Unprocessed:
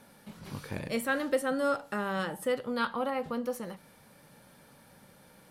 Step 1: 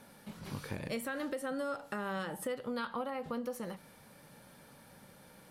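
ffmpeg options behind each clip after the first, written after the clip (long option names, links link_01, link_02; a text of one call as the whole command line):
ffmpeg -i in.wav -af "alimiter=limit=-23dB:level=0:latency=1:release=113,acompressor=threshold=-35dB:ratio=3" out.wav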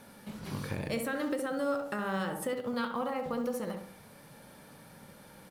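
ffmpeg -i in.wav -filter_complex "[0:a]asplit=2[link_01][link_02];[link_02]adelay=67,lowpass=frequency=1400:poles=1,volume=-4.5dB,asplit=2[link_03][link_04];[link_04]adelay=67,lowpass=frequency=1400:poles=1,volume=0.47,asplit=2[link_05][link_06];[link_06]adelay=67,lowpass=frequency=1400:poles=1,volume=0.47,asplit=2[link_07][link_08];[link_08]adelay=67,lowpass=frequency=1400:poles=1,volume=0.47,asplit=2[link_09][link_10];[link_10]adelay=67,lowpass=frequency=1400:poles=1,volume=0.47,asplit=2[link_11][link_12];[link_12]adelay=67,lowpass=frequency=1400:poles=1,volume=0.47[link_13];[link_01][link_03][link_05][link_07][link_09][link_11][link_13]amix=inputs=7:normalize=0,asplit=2[link_14][link_15];[link_15]acrusher=bits=5:mode=log:mix=0:aa=0.000001,volume=-8dB[link_16];[link_14][link_16]amix=inputs=2:normalize=0" out.wav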